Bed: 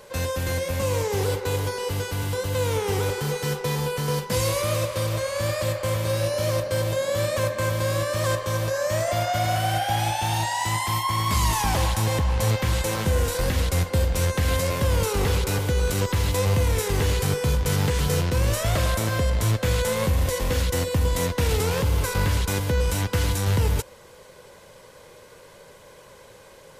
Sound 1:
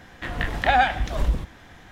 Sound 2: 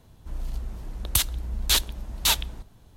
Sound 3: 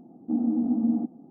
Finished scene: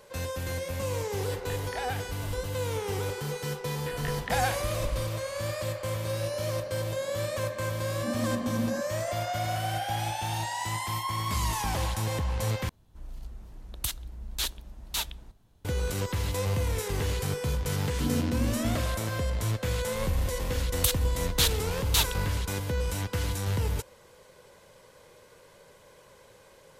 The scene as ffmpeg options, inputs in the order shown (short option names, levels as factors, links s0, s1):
-filter_complex "[1:a]asplit=2[s0][s1];[3:a]asplit=2[s2][s3];[2:a]asplit=2[s4][s5];[0:a]volume=0.447[s6];[s2]equalizer=f=290:t=o:w=0.59:g=-13[s7];[s3]asplit=2[s8][s9];[s9]adelay=46,volume=0.794[s10];[s8][s10]amix=inputs=2:normalize=0[s11];[s6]asplit=2[s12][s13];[s12]atrim=end=12.694[s14];[s4]atrim=end=2.96,asetpts=PTS-STARTPTS,volume=0.335[s15];[s13]atrim=start=15.646[s16];[s0]atrim=end=1.91,asetpts=PTS-STARTPTS,volume=0.15,afade=t=in:d=0.004:c=hsin,afade=t=out:st=1.906:d=0.004:c=hsin,adelay=1090[s17];[s1]atrim=end=1.91,asetpts=PTS-STARTPTS,volume=0.299,afade=t=in:d=0.004:c=hsin,afade=t=out:st=1.906:d=0.004:c=hsin,adelay=3640[s18];[s7]atrim=end=1.3,asetpts=PTS-STARTPTS,volume=0.944,afade=t=in:d=0.004:c=hsin,afade=t=out:st=1.296:d=0.004:c=hsin,adelay=7750[s19];[s11]atrim=end=1.3,asetpts=PTS-STARTPTS,volume=0.376,afade=t=in:d=0.004:c=hsin,afade=t=out:st=1.296:d=0.004:c=hsin,adelay=17710[s20];[s5]atrim=end=2.96,asetpts=PTS-STARTPTS,volume=0.668,afade=t=in:d=0.004:c=hsin,afade=t=out:st=2.956:d=0.004:c=hsin,adelay=19690[s21];[s14][s15]acrossfade=d=0.004:c1=hsin:c2=hsin[s22];[s22][s16]acrossfade=d=0.004:c1=hsin:c2=hsin[s23];[s23][s17][s18][s19][s20][s21]amix=inputs=6:normalize=0"